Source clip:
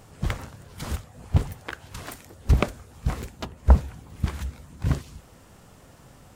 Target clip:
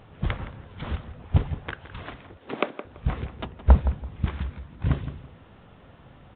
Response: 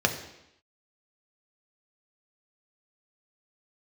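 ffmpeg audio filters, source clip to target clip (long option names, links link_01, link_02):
-filter_complex "[0:a]asettb=1/sr,asplit=3[link_01][link_02][link_03];[link_01]atrim=end=2.374[link_04];[link_02]atrim=start=2.37:end=2.85,asetpts=PTS-STARTPTS,afade=type=in:duration=0.004:curve=qsin,afade=type=out:start_time=0.476:duration=0.004:curve=qsin,highpass=frequency=270:width=0.5412,highpass=frequency=270:width=1.3066[link_05];[link_03]atrim=start=2.846[link_06];[link_04][link_05]acrossfade=duration=0.004:curve1=hsin:curve2=qsin[link_07];[link_07][link_06]acrossfade=duration=0.004:curve1=qsin:curve2=hsin,asplit=2[link_08][link_09];[link_09]adelay=167,lowpass=frequency=1900:poles=1,volume=-11dB,asplit=2[link_10][link_11];[link_11]adelay=167,lowpass=frequency=1900:poles=1,volume=0.25,asplit=2[link_12][link_13];[link_13]adelay=167,lowpass=frequency=1900:poles=1,volume=0.25[link_14];[link_08][link_10][link_12][link_14]amix=inputs=4:normalize=0" -ar 8000 -c:a pcm_alaw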